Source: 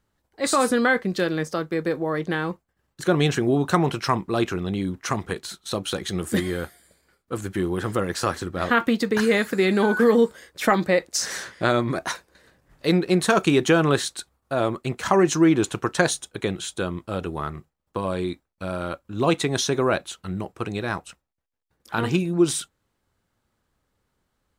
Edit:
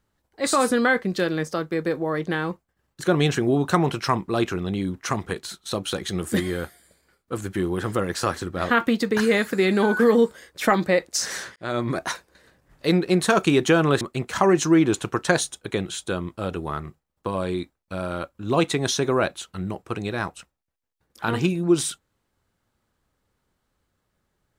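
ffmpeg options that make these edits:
ffmpeg -i in.wav -filter_complex "[0:a]asplit=3[link_01][link_02][link_03];[link_01]atrim=end=11.56,asetpts=PTS-STARTPTS,afade=type=out:start_time=11.556:duration=0.004:curve=hsin[link_04];[link_02]atrim=start=11.56:end=14.012,asetpts=PTS-STARTPTS,afade=type=in:duration=0.33[link_05];[link_03]atrim=start=14.708[link_06];[link_04][link_05]concat=n=2:v=0:a=1[link_07];[link_07][link_06]acrossfade=duration=0.004:curve1=hsin:curve2=hsin" out.wav

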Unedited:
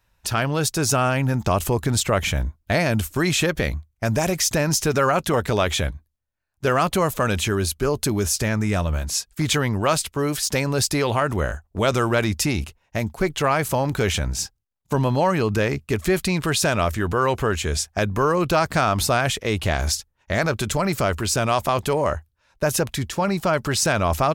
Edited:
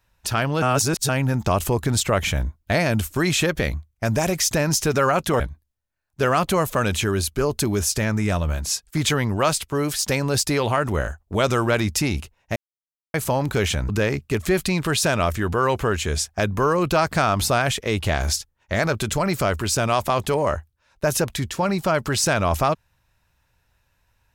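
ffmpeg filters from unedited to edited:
ffmpeg -i in.wav -filter_complex "[0:a]asplit=7[link_01][link_02][link_03][link_04][link_05][link_06][link_07];[link_01]atrim=end=0.622[link_08];[link_02]atrim=start=0.618:end=1.092,asetpts=PTS-STARTPTS,areverse[link_09];[link_03]atrim=start=1.088:end=5.402[link_10];[link_04]atrim=start=5.838:end=13,asetpts=PTS-STARTPTS,afade=type=out:start_time=7.158:duration=0.004:curve=hsin[link_11];[link_05]atrim=start=13:end=13.58,asetpts=PTS-STARTPTS,volume=0[link_12];[link_06]atrim=start=13.58:end=14.332,asetpts=PTS-STARTPTS,afade=type=in:duration=0.004:curve=hsin[link_13];[link_07]atrim=start=15.478[link_14];[link_08][link_09]acrossfade=duration=0.004:curve1=hsin:curve2=hsin[link_15];[link_15][link_10]acrossfade=duration=0.004:curve1=hsin:curve2=hsin[link_16];[link_11][link_12][link_13]concat=n=3:v=0:a=1[link_17];[link_16][link_17]acrossfade=duration=0.004:curve1=hsin:curve2=hsin[link_18];[link_18][link_14]acrossfade=duration=0.004:curve1=hsin:curve2=hsin" out.wav

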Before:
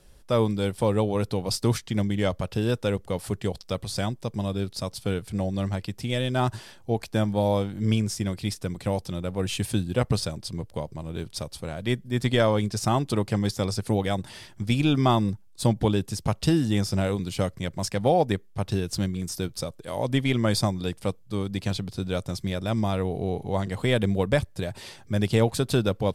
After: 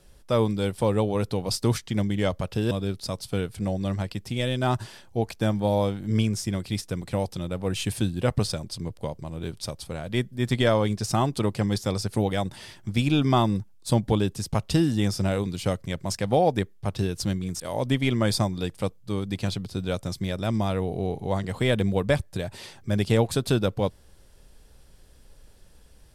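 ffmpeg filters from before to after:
ffmpeg -i in.wav -filter_complex "[0:a]asplit=3[link_01][link_02][link_03];[link_01]atrim=end=2.712[link_04];[link_02]atrim=start=4.438:end=19.332[link_05];[link_03]atrim=start=19.828[link_06];[link_04][link_05]acrossfade=duration=0.004:curve1=hsin:curve2=hsin[link_07];[link_07][link_06]acrossfade=duration=0.004:curve1=hsin:curve2=hsin" out.wav

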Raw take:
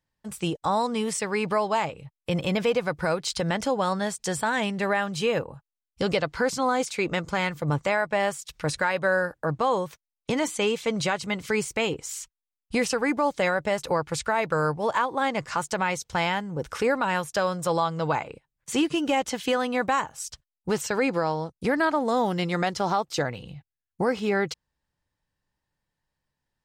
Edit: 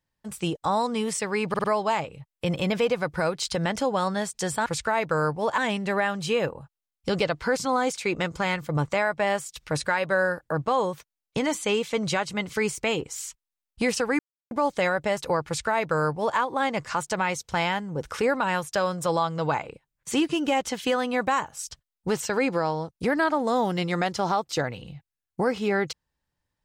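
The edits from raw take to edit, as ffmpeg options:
ffmpeg -i in.wav -filter_complex "[0:a]asplit=7[link_01][link_02][link_03][link_04][link_05][link_06][link_07];[link_01]atrim=end=1.542[link_08];[link_02]atrim=start=1.488:end=1.542[link_09];[link_03]atrim=start=1.488:end=1.542[link_10];[link_04]atrim=start=1.488:end=4.512[link_11];[link_05]atrim=start=14.068:end=14.992[link_12];[link_06]atrim=start=4.508:end=13.12,asetpts=PTS-STARTPTS,afade=type=out:start_time=8.608:duration=0.004:curve=hsin,apad=pad_dur=0.32[link_13];[link_07]atrim=start=13.12,asetpts=PTS-STARTPTS,afade=type=in:duration=0.004:curve=hsin[link_14];[link_08][link_09]acrossfade=duration=0.004:curve1=hsin:curve2=hsin[link_15];[link_15][link_10]acrossfade=duration=0.004:curve1=hsin:curve2=hsin[link_16];[link_16][link_11]acrossfade=duration=0.004:curve1=hsin:curve2=hsin[link_17];[link_17][link_12]acrossfade=duration=0.004:curve1=hsin:curve2=hsin[link_18];[link_13][link_14]concat=n=2:v=0:a=1[link_19];[link_18][link_19]acrossfade=duration=0.004:curve1=hsin:curve2=hsin" out.wav

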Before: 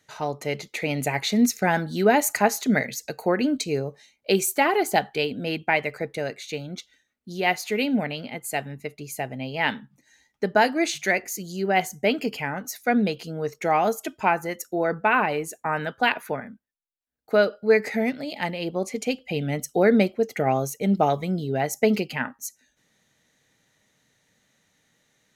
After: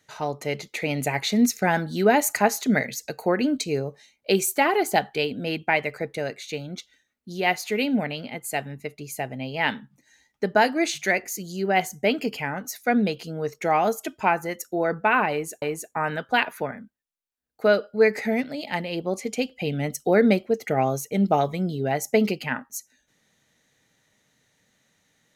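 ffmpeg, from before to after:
ffmpeg -i in.wav -filter_complex "[0:a]asplit=2[link_01][link_02];[link_01]atrim=end=15.622[link_03];[link_02]atrim=start=15.308[link_04];[link_03][link_04]acrossfade=duration=0.004:curve1=hsin:curve2=hsin" out.wav

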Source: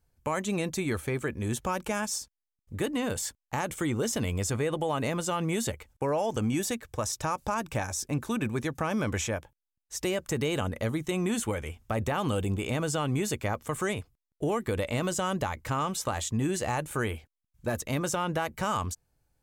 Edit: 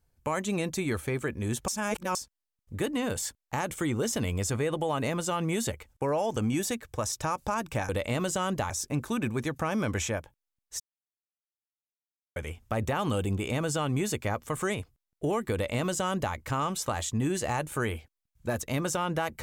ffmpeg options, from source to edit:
ffmpeg -i in.wav -filter_complex "[0:a]asplit=7[link_01][link_02][link_03][link_04][link_05][link_06][link_07];[link_01]atrim=end=1.682[link_08];[link_02]atrim=start=1.678:end=2.152,asetpts=PTS-STARTPTS,areverse[link_09];[link_03]atrim=start=2.148:end=7.892[link_10];[link_04]atrim=start=14.718:end=15.532[link_11];[link_05]atrim=start=7.888:end=9.99,asetpts=PTS-STARTPTS,afade=type=out:start_time=2.098:duration=0.004:curve=hsin[link_12];[link_06]atrim=start=9.99:end=11.55,asetpts=PTS-STARTPTS,volume=0[link_13];[link_07]atrim=start=11.55,asetpts=PTS-STARTPTS,afade=type=in:duration=0.004:curve=hsin[link_14];[link_08][link_09]acrossfade=duration=0.004:curve1=hsin:curve2=hsin[link_15];[link_15][link_10]acrossfade=duration=0.004:curve1=hsin:curve2=hsin[link_16];[link_16][link_11]acrossfade=duration=0.004:curve1=hsin:curve2=hsin[link_17];[link_12][link_13][link_14]concat=n=3:v=0:a=1[link_18];[link_17][link_18]acrossfade=duration=0.004:curve1=hsin:curve2=hsin" out.wav

